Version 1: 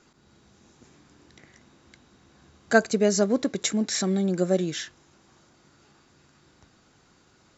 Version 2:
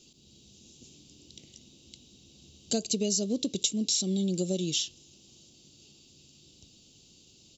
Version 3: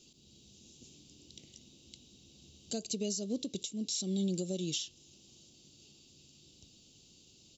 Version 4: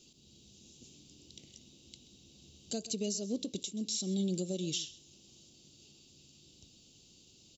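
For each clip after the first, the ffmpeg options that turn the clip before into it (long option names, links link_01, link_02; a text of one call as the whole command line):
ffmpeg -i in.wav -af "firequalizer=gain_entry='entry(240,0);entry(510,-5);entry(880,-18);entry(1700,-29);entry(2800,8)':delay=0.05:min_phase=1,acompressor=threshold=-25dB:ratio=6" out.wav
ffmpeg -i in.wav -af "alimiter=limit=-22dB:level=0:latency=1:release=311,volume=-3dB" out.wav
ffmpeg -i in.wav -af "aecho=1:1:130:0.133" out.wav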